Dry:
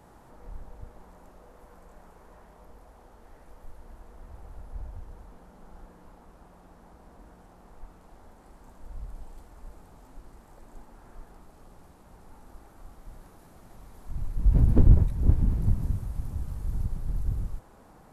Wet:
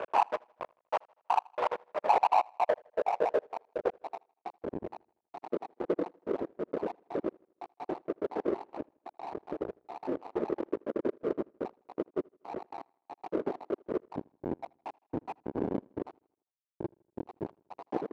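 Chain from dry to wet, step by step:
time-frequency cells dropped at random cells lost 79%
in parallel at −2 dB: downward compressor, threshold −44 dBFS, peak gain reduction 26.5 dB
on the sum: Bessel low-pass filter 1,500 Hz
flat-topped bell 610 Hz +10 dB
fuzz pedal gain 46 dB, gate −52 dBFS
on a send: repeating echo 80 ms, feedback 57%, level −20 dB
on the sum: band-pass filter sweep 940 Hz → 330 Hz, 0:01.67–0:04.69
power curve on the samples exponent 1.4
high-pass filter 220 Hz 6 dB per octave

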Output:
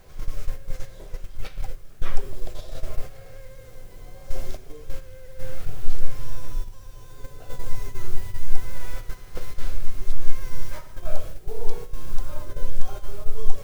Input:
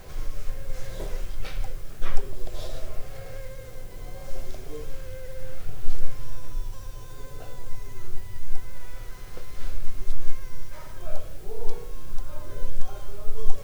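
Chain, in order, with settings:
speech leveller 0.5 s
noise gate −25 dBFS, range −9 dB
level +3 dB

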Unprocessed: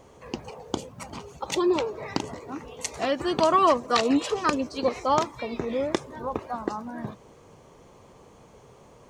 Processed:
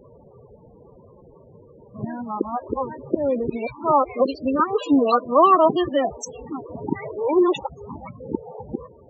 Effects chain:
played backwards from end to start
spectral peaks only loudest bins 16
level +5.5 dB

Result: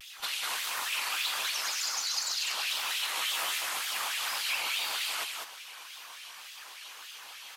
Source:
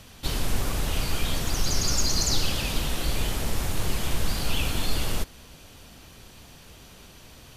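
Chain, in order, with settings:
high-pass filter 200 Hz
downward compressor 16 to 1, threshold −33 dBFS, peak gain reduction 11.5 dB
auto-filter high-pass sine 3.4 Hz 950–3,100 Hz
0:01.28–0:02.17: gain into a clipping stage and back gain 26.5 dB
random phases in short frames
flanger 1.4 Hz, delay 7.1 ms, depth 9.6 ms, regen −78%
tape wow and flutter 140 cents
0:03.14–0:03.58: double-tracking delay 15 ms −3 dB
0:04.32–0:04.77: frequency shifter −97 Hz
single-tap delay 198 ms −3.5 dB
on a send at −17 dB: convolution reverb RT60 1.0 s, pre-delay 30 ms
on the sum: level +6 dB

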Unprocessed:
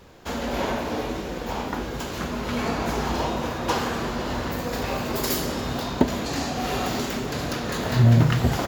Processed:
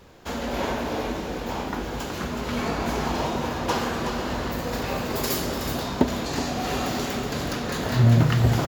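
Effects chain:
single-tap delay 372 ms −8 dB
level −1 dB

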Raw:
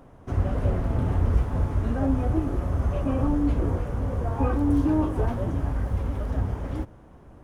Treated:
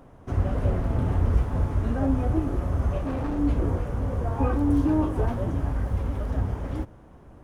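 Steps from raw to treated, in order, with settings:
0:02.98–0:03.39: hard clipping −25.5 dBFS, distortion −17 dB

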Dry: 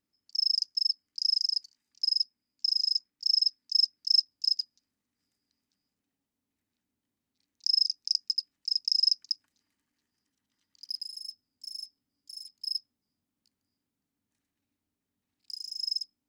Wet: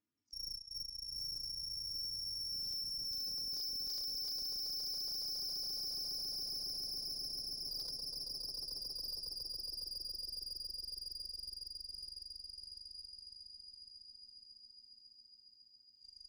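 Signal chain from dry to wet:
harmonic-percussive split with one part muted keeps harmonic
source passing by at 0:03.48, 20 m/s, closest 11 metres
high-frequency loss of the air 85 metres
on a send: echo that builds up and dies away 138 ms, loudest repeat 8, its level −8 dB
on the sum: tube saturation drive 56 dB, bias 0.5
level +16.5 dB

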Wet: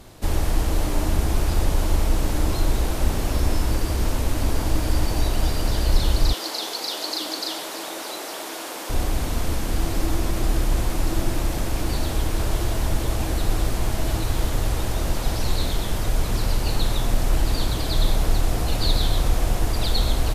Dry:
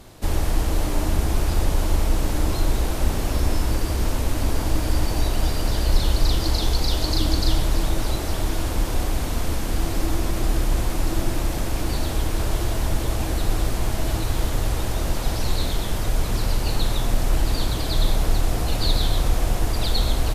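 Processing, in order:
0:06.33–0:08.90: Bessel high-pass filter 470 Hz, order 4

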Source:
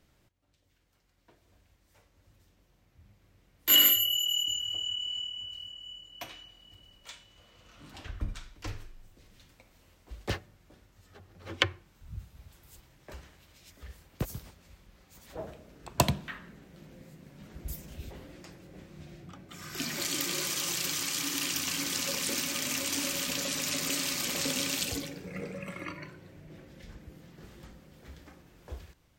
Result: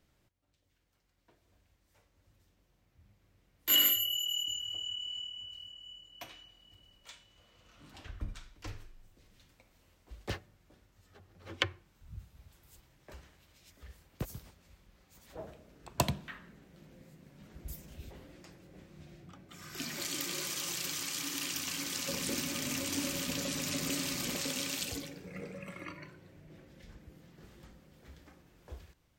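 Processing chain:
0:22.08–0:24.37: low-shelf EQ 410 Hz +9 dB
level −5 dB

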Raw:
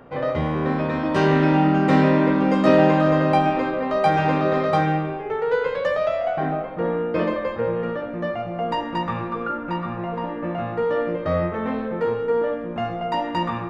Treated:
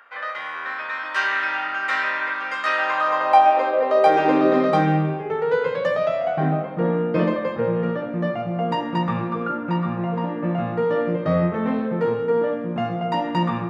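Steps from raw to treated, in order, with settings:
high-pass filter sweep 1,500 Hz → 150 Hz, 0:02.74–0:05.15

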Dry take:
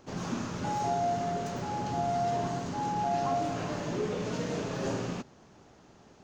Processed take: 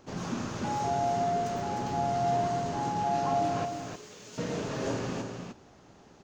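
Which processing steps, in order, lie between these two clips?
0:03.65–0:04.38: first-order pre-emphasis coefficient 0.9
on a send: single-tap delay 305 ms −5.5 dB

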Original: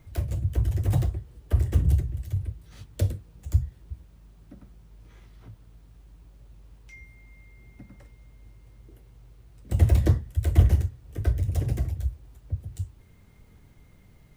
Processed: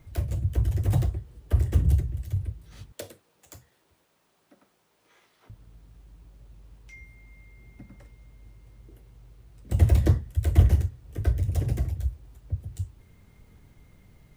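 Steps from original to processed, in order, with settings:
0:02.92–0:05.50: high-pass filter 490 Hz 12 dB per octave

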